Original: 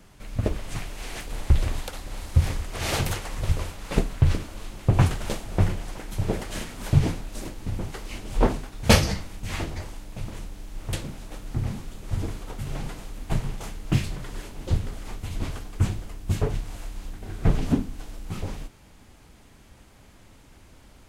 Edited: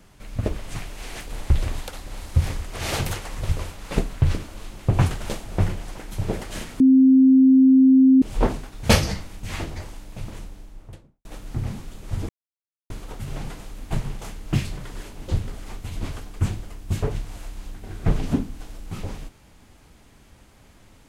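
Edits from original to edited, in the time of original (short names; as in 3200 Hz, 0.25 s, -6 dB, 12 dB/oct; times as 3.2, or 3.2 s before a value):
6.8–8.22 bleep 263 Hz -10 dBFS
10.3–11.25 studio fade out
12.29 insert silence 0.61 s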